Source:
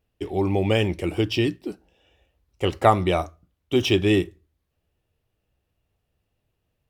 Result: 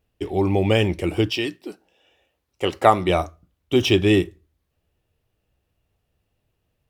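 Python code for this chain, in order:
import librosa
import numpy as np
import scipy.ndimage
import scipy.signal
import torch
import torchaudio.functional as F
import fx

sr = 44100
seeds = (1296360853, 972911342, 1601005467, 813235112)

y = fx.highpass(x, sr, hz=fx.line((1.29, 670.0), (3.08, 200.0)), slope=6, at=(1.29, 3.08), fade=0.02)
y = y * 10.0 ** (2.5 / 20.0)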